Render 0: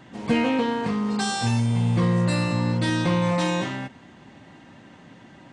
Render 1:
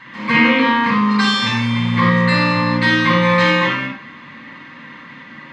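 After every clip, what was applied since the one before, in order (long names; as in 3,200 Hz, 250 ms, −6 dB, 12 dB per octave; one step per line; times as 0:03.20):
flat-topped bell 2,200 Hz +16 dB 2.8 octaves
hollow resonant body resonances 230/510/1,100 Hz, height 10 dB, ringing for 45 ms
convolution reverb RT60 0.40 s, pre-delay 40 ms, DRR 0.5 dB
level −10 dB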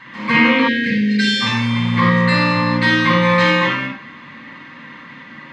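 time-frequency box erased 0:00.68–0:01.41, 540–1,500 Hz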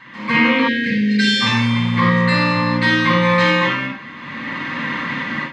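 automatic gain control gain up to 16 dB
level −2 dB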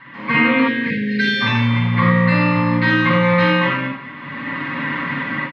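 low-pass filter 2,700 Hz 12 dB per octave
comb filter 7.1 ms, depth 46%
single-tap delay 216 ms −17.5 dB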